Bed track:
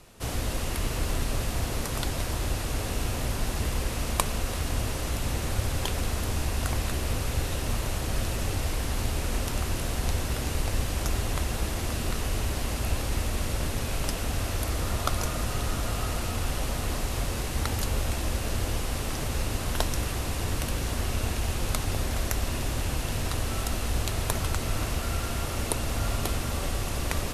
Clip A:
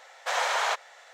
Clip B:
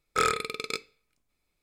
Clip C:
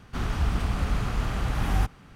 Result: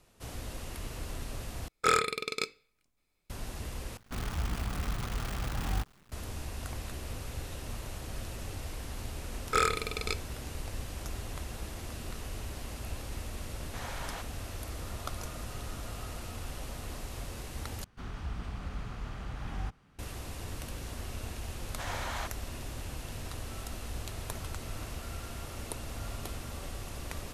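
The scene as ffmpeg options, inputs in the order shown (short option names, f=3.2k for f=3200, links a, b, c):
-filter_complex "[2:a]asplit=2[a][b];[3:a]asplit=2[c][d];[1:a]asplit=2[e][f];[0:a]volume=-11dB[g];[c]acrusher=bits=6:dc=4:mix=0:aa=0.000001[h];[d]acrossover=split=8300[i][j];[j]acompressor=threshold=-60dB:ratio=4:attack=1:release=60[k];[i][k]amix=inputs=2:normalize=0[l];[g]asplit=4[m][n][o][p];[m]atrim=end=1.684[q];[a]atrim=end=1.62,asetpts=PTS-STARTPTS,volume=-0.5dB[r];[n]atrim=start=3.296:end=3.974[s];[h]atrim=end=2.15,asetpts=PTS-STARTPTS,volume=-8dB[t];[o]atrim=start=6.116:end=17.844[u];[l]atrim=end=2.15,asetpts=PTS-STARTPTS,volume=-12.5dB[v];[p]atrim=start=19.986[w];[b]atrim=end=1.62,asetpts=PTS-STARTPTS,volume=-2dB,afade=t=in:d=0.004:c=hsin,afade=t=out:st=1.616:d=0.004:c=hsin,adelay=9370[x];[e]atrim=end=1.13,asetpts=PTS-STARTPTS,volume=-16.5dB,afade=t=in:d=0.004:c=hsin,afade=t=out:st=1.126:d=0.004:c=hsin,adelay=13470[y];[f]atrim=end=1.13,asetpts=PTS-STARTPTS,volume=-12dB,afade=t=in:d=0.004:c=hsin,afade=t=out:st=1.126:d=0.004:c=hsin,adelay=21520[z];[q][r]acrossfade=d=0.004:c1=hsin:c2=hsin[aa];[aa][s]acrossfade=d=0.004:c1=hsin:c2=hsin[ab];[ab][t]acrossfade=d=0.004:c1=hsin:c2=hsin[ac];[ac][u]acrossfade=d=0.004:c1=hsin:c2=hsin[ad];[ad][v]acrossfade=d=0.004:c1=hsin:c2=hsin[ae];[ae][w]acrossfade=d=0.004:c1=hsin:c2=hsin[af];[af][x][y][z]amix=inputs=4:normalize=0"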